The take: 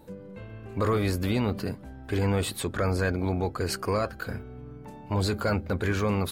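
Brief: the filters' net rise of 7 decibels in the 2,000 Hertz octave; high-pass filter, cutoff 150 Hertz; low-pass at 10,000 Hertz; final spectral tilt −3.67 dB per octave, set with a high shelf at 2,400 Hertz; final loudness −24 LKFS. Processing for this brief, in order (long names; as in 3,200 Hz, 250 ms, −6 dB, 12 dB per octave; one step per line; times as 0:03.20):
high-pass filter 150 Hz
low-pass filter 10,000 Hz
parametric band 2,000 Hz +5.5 dB
high-shelf EQ 2,400 Hz +8.5 dB
level +3 dB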